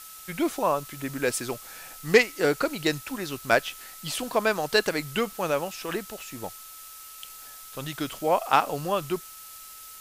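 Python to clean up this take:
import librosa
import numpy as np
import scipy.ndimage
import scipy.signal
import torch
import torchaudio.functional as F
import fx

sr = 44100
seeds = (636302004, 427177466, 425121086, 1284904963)

y = fx.notch(x, sr, hz=1300.0, q=30.0)
y = fx.noise_reduce(y, sr, print_start_s=6.67, print_end_s=7.17, reduce_db=27.0)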